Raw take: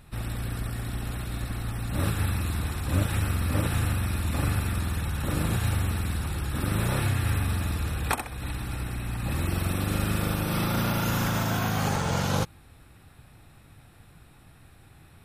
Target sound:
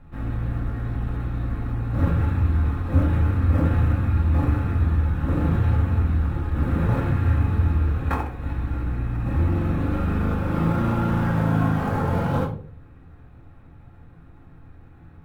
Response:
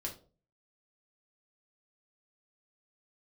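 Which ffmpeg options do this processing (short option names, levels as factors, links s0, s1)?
-filter_complex "[0:a]lowpass=1500,acrossover=split=520[s0][s1];[s1]acrusher=bits=5:mode=log:mix=0:aa=0.000001[s2];[s0][s2]amix=inputs=2:normalize=0[s3];[1:a]atrim=start_sample=2205,asetrate=35280,aresample=44100[s4];[s3][s4]afir=irnorm=-1:irlink=0,volume=1.26"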